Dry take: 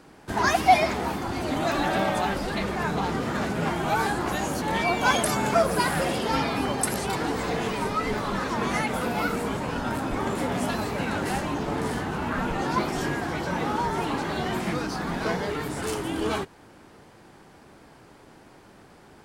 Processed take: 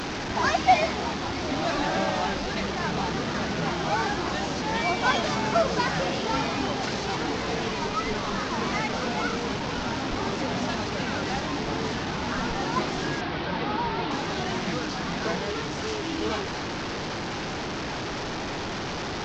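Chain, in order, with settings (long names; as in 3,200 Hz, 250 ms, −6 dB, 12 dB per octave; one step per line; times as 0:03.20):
linear delta modulator 32 kbit/s, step −24 dBFS
0:13.21–0:14.11: low-pass filter 4,500 Hz 24 dB per octave
level −1.5 dB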